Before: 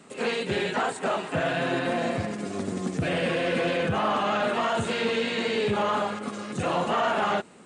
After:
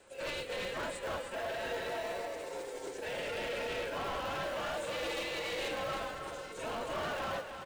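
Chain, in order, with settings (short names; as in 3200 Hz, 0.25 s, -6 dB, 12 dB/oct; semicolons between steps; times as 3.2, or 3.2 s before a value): Chebyshev high-pass 380 Hz, order 3; bell 960 Hz -4.5 dB 0.21 oct; formant-preserving pitch shift +3.5 st; frequency shift +48 Hz; in parallel at -7 dB: decimation with a swept rate 37×, swing 60% 0.34 Hz; on the sum: soft clip -27 dBFS, distortion -11 dB; on a send: echo 0.309 s -7.5 dB; on the sum: gain -6.5 dB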